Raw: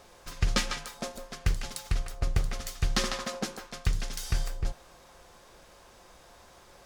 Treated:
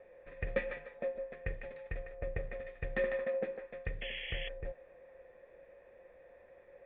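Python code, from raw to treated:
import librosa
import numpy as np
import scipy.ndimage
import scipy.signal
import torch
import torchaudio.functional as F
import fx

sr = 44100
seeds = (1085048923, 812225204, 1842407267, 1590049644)

y = fx.formant_cascade(x, sr, vowel='e')
y = fx.spec_paint(y, sr, seeds[0], shape='noise', start_s=4.01, length_s=0.48, low_hz=1700.0, high_hz=3400.0, level_db=-50.0)
y = F.gain(torch.from_numpy(y), 7.0).numpy()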